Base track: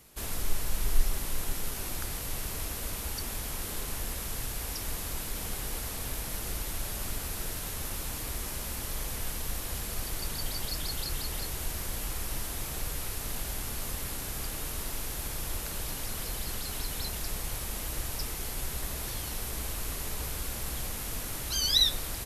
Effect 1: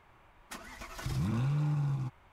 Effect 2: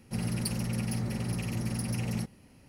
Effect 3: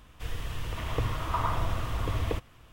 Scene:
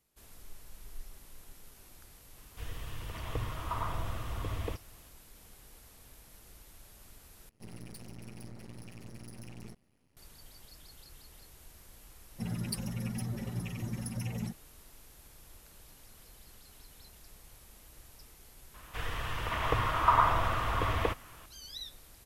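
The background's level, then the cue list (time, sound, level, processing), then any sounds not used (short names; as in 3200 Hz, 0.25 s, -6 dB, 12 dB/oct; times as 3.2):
base track -20 dB
2.37 add 3 -6.5 dB
7.49 replace with 2 -11.5 dB + half-wave rectifier
12.27 add 2 -1 dB + per-bin expansion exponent 2
18.74 add 3 -4 dB + bell 1300 Hz +11.5 dB 2.7 oct
not used: 1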